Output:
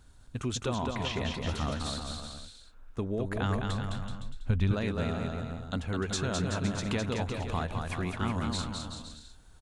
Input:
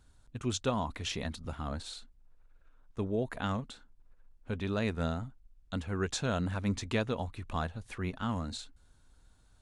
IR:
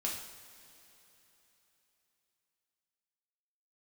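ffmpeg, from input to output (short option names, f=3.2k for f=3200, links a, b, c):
-filter_complex "[0:a]acompressor=threshold=-35dB:ratio=4,aecho=1:1:210|378|512.4|619.9|705.9:0.631|0.398|0.251|0.158|0.1,asettb=1/sr,asplit=3[a][b][c];[a]atrim=end=0.754[d];[b]atrim=start=0.75:end=1.49,asetpts=PTS-STARTPTS,afade=t=in:d=0.004:c=qsin,afade=t=out:st=0.736:d=0.004:c=qsin,acrossover=split=4100[e][f];[f]acompressor=threshold=-57dB:ratio=4:attack=1:release=60[g];[e][g]amix=inputs=2:normalize=0[h];[c]atrim=start=1.486[i];[d][h]acrossfade=d=0.004:c1=hsin:c2=qsin[j];[j][i]acrossfade=d=0.004:c1=qsin:c2=hsin,asettb=1/sr,asplit=3[k][l][m];[k]atrim=end=3.024[n];[l]atrim=start=3.02:end=4.74,asetpts=PTS-STARTPTS,afade=t=in:d=0.004:c=qsin,afade=t=out:st=1.716:d=0.004:c=qsin,asubboost=boost=8:cutoff=160[o];[m]atrim=start=4.736[p];[n][o]acrossfade=d=0.004:c1=hsin:c2=qsin[q];[q][p]acrossfade=d=0.004:c1=qsin:c2=hsin,volume=5.5dB"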